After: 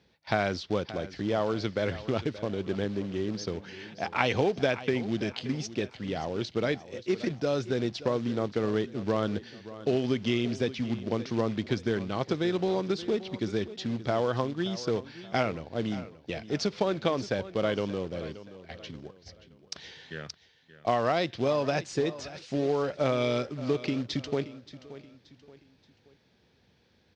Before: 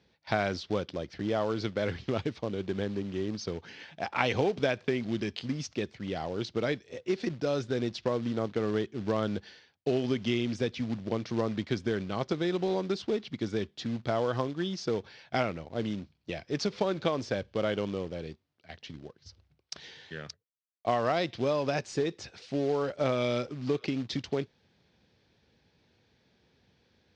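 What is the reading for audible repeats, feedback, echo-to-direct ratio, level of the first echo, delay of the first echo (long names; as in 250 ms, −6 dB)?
3, 38%, −15.0 dB, −15.5 dB, 577 ms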